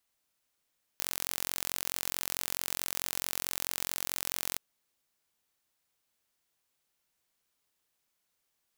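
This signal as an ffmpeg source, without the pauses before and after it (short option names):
-f lavfi -i "aevalsrc='0.501*eq(mod(n,989),0)':d=3.58:s=44100"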